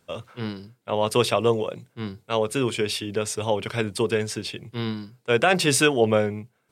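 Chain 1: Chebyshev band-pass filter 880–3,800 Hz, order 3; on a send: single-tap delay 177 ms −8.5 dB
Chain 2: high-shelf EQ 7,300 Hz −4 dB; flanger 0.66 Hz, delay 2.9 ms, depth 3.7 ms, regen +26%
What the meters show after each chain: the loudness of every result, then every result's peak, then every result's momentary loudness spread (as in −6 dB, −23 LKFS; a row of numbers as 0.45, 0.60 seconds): −29.5, −28.0 LKFS; −7.5, −6.0 dBFS; 19, 14 LU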